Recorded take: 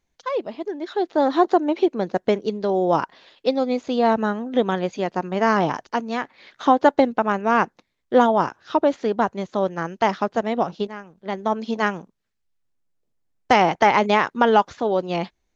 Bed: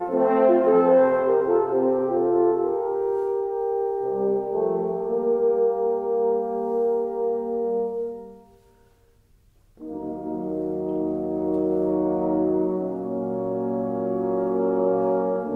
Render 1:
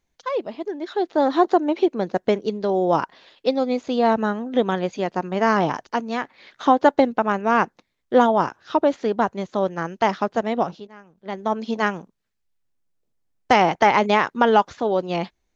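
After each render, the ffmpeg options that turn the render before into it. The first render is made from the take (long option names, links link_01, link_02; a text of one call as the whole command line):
ffmpeg -i in.wav -filter_complex "[0:a]asplit=2[link_01][link_02];[link_01]atrim=end=10.8,asetpts=PTS-STARTPTS,afade=type=out:start_time=10.796:duration=0.004:curve=hsin:silence=0.188365[link_03];[link_02]atrim=start=10.8,asetpts=PTS-STARTPTS,afade=type=in:duration=0.77:silence=0.188365[link_04];[link_03][link_04]concat=n=2:v=0:a=1" out.wav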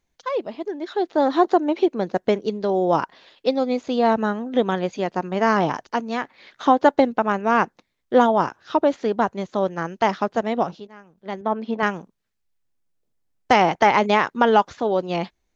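ffmpeg -i in.wav -filter_complex "[0:a]asettb=1/sr,asplit=3[link_01][link_02][link_03];[link_01]atrim=end=11.414[link_04];[link_02]atrim=start=11.41:end=11.83,asetpts=PTS-STARTPTS,afade=type=in:duration=0.004:curve=qsin,afade=type=out:start_time=0.416:duration=0.004:curve=qsin,highpass=120,lowpass=2500[link_05];[link_03]atrim=start=11.826[link_06];[link_04][link_05]acrossfade=duration=0.004:curve1=hsin:curve2=qsin[link_07];[link_07][link_06]acrossfade=duration=0.004:curve1=qsin:curve2=hsin" out.wav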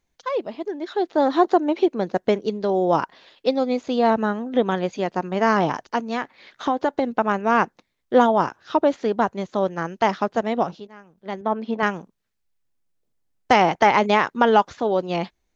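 ffmpeg -i in.wav -filter_complex "[0:a]asettb=1/sr,asplit=3[link_01][link_02][link_03];[link_01]atrim=end=4.104[link_04];[link_02]atrim=start=4.1:end=4.71,asetpts=PTS-STARTPTS,afade=type=in:duration=0.004:curve=qsin,afade=type=out:start_time=0.606:duration=0.004:curve=qsin,acrossover=split=4000[link_05][link_06];[link_06]acompressor=threshold=-53dB:ratio=4:attack=1:release=60[link_07];[link_05][link_07]amix=inputs=2:normalize=0[link_08];[link_03]atrim=start=4.706[link_09];[link_04][link_08]acrossfade=duration=0.004:curve1=hsin:curve2=qsin[link_10];[link_10][link_09]acrossfade=duration=0.004:curve1=qsin:curve2=hsin,asettb=1/sr,asplit=3[link_11][link_12][link_13];[link_11]atrim=end=6.084[link_14];[link_12]atrim=start=6.08:end=7.14,asetpts=PTS-STARTPTS,afade=type=in:duration=0.004:curve=qsin,afade=type=out:start_time=1.056:duration=0.004:curve=qsin,acompressor=threshold=-18dB:ratio=3:attack=3.2:release=140:knee=1:detection=peak[link_15];[link_13]atrim=start=7.136[link_16];[link_14][link_15]acrossfade=duration=0.004:curve1=hsin:curve2=qsin[link_17];[link_17][link_16]acrossfade=duration=0.004:curve1=qsin:curve2=hsin" out.wav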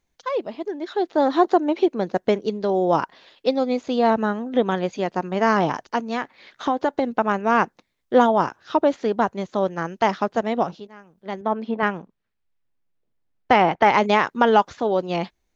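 ffmpeg -i in.wav -filter_complex "[0:a]asplit=3[link_01][link_02][link_03];[link_01]afade=type=out:start_time=11.68:duration=0.02[link_04];[link_02]lowpass=3300,afade=type=in:start_time=11.68:duration=0.02,afade=type=out:start_time=13.85:duration=0.02[link_05];[link_03]afade=type=in:start_time=13.85:duration=0.02[link_06];[link_04][link_05][link_06]amix=inputs=3:normalize=0" out.wav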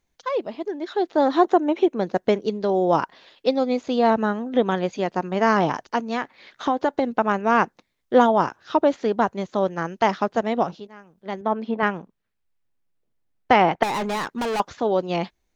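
ffmpeg -i in.wav -filter_complex "[0:a]asettb=1/sr,asplit=3[link_01][link_02][link_03];[link_01]atrim=end=1.454[link_04];[link_02]atrim=start=1.45:end=1.99,asetpts=PTS-STARTPTS,afade=type=in:duration=0.004:curve=qsin,afade=type=out:start_time=0.536:duration=0.004:curve=qsin,equalizer=frequency=4600:width=6.2:gain=-15[link_05];[link_03]atrim=start=1.986[link_06];[link_04][link_05]acrossfade=duration=0.004:curve1=hsin:curve2=qsin[link_07];[link_07][link_06]acrossfade=duration=0.004:curve1=qsin:curve2=hsin,asettb=1/sr,asplit=3[link_08][link_09][link_10];[link_08]atrim=end=13.834[link_11];[link_09]atrim=start=13.83:end=14.6,asetpts=PTS-STARTPTS,afade=type=in:duration=0.004:curve=qsin,afade=type=out:start_time=0.766:duration=0.004:curve=qsin,volume=23.5dB,asoftclip=hard,volume=-23.5dB[link_12];[link_10]atrim=start=14.596[link_13];[link_11][link_12]acrossfade=duration=0.004:curve1=hsin:curve2=qsin[link_14];[link_14][link_13]acrossfade=duration=0.004:curve1=qsin:curve2=hsin" out.wav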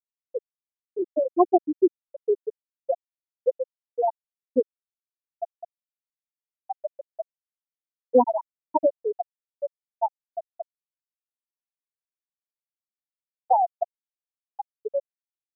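ffmpeg -i in.wav -af "afftfilt=real='re*gte(hypot(re,im),1.12)':imag='im*gte(hypot(re,im),1.12)':win_size=1024:overlap=0.75" out.wav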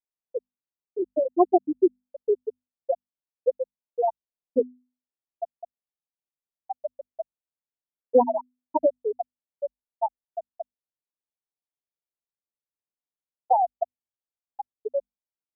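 ffmpeg -i in.wav -af "lowpass=frequency=1000:width=0.5412,lowpass=frequency=1000:width=1.3066,bandreject=frequency=50:width_type=h:width=6,bandreject=frequency=100:width_type=h:width=6,bandreject=frequency=150:width_type=h:width=6,bandreject=frequency=200:width_type=h:width=6,bandreject=frequency=250:width_type=h:width=6" out.wav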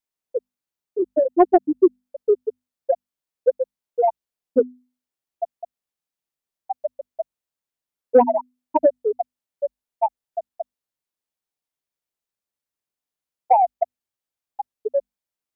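ffmpeg -i in.wav -af "acontrast=38" out.wav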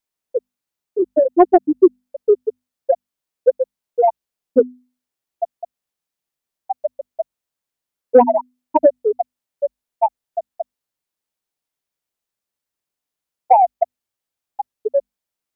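ffmpeg -i in.wav -af "volume=4dB,alimiter=limit=-1dB:level=0:latency=1" out.wav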